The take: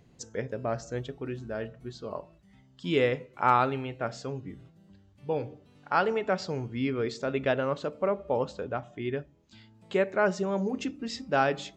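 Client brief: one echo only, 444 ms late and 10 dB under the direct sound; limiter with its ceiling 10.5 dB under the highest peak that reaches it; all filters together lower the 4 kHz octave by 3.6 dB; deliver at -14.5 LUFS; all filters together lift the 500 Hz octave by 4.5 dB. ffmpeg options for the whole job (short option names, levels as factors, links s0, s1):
-af "equalizer=f=500:t=o:g=5.5,equalizer=f=4000:t=o:g=-5,alimiter=limit=0.126:level=0:latency=1,aecho=1:1:444:0.316,volume=5.96"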